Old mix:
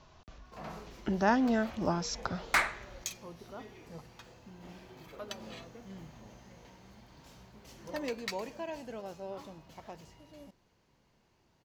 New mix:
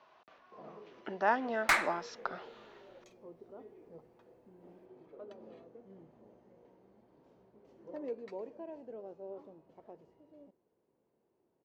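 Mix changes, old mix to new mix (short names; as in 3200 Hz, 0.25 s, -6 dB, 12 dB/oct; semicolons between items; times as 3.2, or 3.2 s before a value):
speech: add BPF 490–2600 Hz; first sound: add band-pass 410 Hz, Q 1.9; second sound: entry -0.85 s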